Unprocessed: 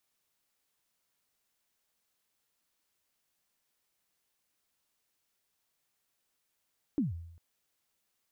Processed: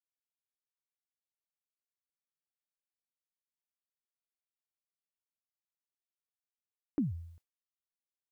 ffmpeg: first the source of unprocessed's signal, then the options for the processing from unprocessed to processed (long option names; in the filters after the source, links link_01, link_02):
-f lavfi -i "aevalsrc='0.0631*pow(10,-3*t/0.8)*sin(2*PI*(320*0.149/log(84/320)*(exp(log(84/320)*min(t,0.149)/0.149)-1)+84*max(t-0.149,0)))':duration=0.4:sample_rate=44100"
-af "agate=range=-33dB:threshold=-52dB:ratio=3:detection=peak"